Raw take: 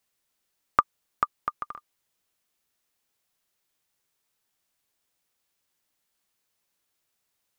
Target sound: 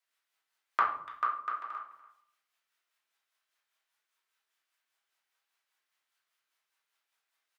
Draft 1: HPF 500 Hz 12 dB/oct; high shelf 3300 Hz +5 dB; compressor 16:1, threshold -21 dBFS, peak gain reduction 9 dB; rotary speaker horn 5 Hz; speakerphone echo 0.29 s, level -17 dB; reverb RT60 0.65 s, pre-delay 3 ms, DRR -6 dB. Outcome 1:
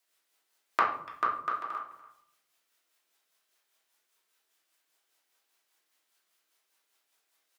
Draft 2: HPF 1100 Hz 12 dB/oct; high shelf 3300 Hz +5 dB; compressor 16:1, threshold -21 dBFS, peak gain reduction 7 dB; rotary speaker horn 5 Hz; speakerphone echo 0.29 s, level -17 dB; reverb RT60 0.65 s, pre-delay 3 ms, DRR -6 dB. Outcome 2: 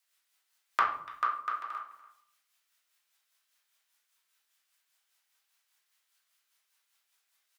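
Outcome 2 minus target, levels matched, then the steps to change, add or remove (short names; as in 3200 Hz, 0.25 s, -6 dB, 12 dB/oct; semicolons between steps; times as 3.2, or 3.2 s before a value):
4000 Hz band +5.0 dB
change: high shelf 3300 Hz -6.5 dB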